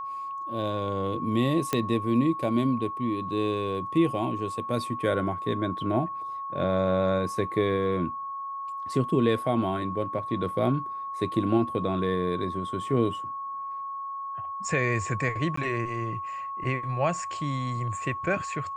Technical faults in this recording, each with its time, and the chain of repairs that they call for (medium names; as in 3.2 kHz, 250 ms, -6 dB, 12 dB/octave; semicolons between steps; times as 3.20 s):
whine 1.1 kHz -32 dBFS
1.73 s: pop -11 dBFS
15.56–15.57 s: dropout 14 ms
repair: de-click; band-stop 1.1 kHz, Q 30; interpolate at 15.56 s, 14 ms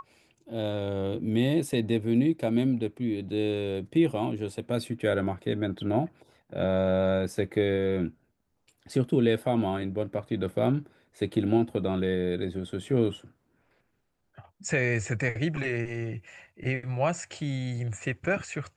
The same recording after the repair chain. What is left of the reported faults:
nothing left